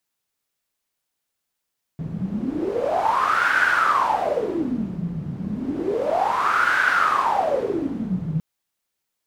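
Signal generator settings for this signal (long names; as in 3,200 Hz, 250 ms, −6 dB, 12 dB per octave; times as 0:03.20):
wind from filtered noise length 6.41 s, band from 160 Hz, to 1,500 Hz, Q 10, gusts 2, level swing 8.5 dB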